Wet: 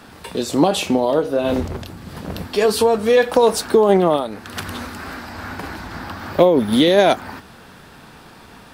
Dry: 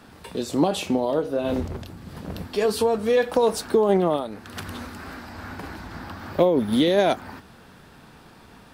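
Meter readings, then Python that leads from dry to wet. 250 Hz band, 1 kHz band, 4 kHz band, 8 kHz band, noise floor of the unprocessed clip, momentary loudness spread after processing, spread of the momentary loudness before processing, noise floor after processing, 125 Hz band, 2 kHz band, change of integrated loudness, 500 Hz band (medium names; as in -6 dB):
+5.0 dB, +6.5 dB, +7.5 dB, +7.5 dB, -49 dBFS, 17 LU, 18 LU, -43 dBFS, +4.5 dB, +7.5 dB, +6.0 dB, +6.0 dB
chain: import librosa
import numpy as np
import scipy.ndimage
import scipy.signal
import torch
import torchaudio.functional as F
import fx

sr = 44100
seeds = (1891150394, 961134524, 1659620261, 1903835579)

y = fx.low_shelf(x, sr, hz=470.0, db=-3.5)
y = y * librosa.db_to_amplitude(7.5)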